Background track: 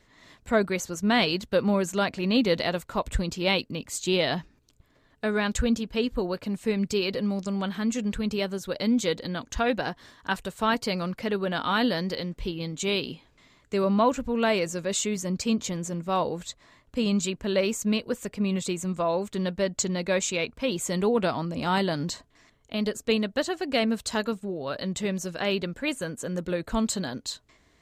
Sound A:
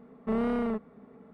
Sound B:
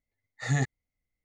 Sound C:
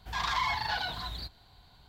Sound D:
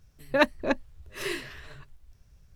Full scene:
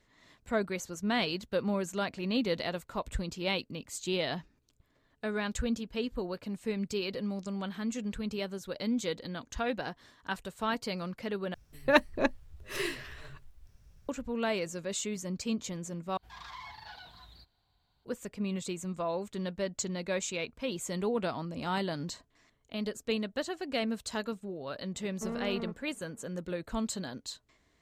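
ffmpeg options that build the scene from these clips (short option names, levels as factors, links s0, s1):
-filter_complex "[0:a]volume=0.422,asplit=3[s0][s1][s2];[s0]atrim=end=11.544[s3];[4:a]atrim=end=2.55,asetpts=PTS-STARTPTS,volume=0.841[s4];[s1]atrim=start=14.086:end=16.174[s5];[3:a]atrim=end=1.88,asetpts=PTS-STARTPTS,volume=0.158[s6];[s2]atrim=start=18.046[s7];[1:a]atrim=end=1.33,asetpts=PTS-STARTPTS,volume=0.355,afade=t=in:d=0.004:c=hsin,afade=t=out:st=1.326:d=0.004:c=hsin,adelay=24940[s8];[s3][s4]acrossfade=d=0.004:c1=hsin:c2=hsin[s9];[s9][s5]acrossfade=d=0.004:c1=hsin:c2=hsin[s10];[s10][s6]acrossfade=d=0.004:c1=hsin:c2=hsin[s11];[s11][s7]acrossfade=d=0.004:c1=hsin:c2=hsin[s12];[s12][s8]amix=inputs=2:normalize=0"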